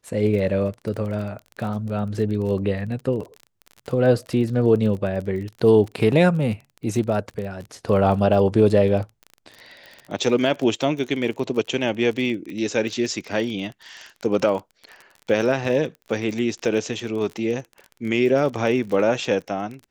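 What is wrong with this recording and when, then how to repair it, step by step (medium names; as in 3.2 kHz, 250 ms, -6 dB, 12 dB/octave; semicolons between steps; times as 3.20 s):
crackle 29 per s -30 dBFS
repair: de-click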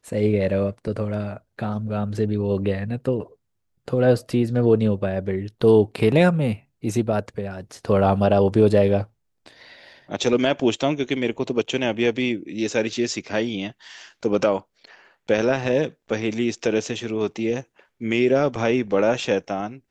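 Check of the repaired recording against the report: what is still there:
nothing left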